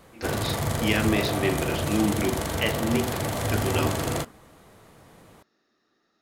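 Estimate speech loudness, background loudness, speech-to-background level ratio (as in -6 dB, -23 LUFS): -28.5 LUFS, -28.0 LUFS, -0.5 dB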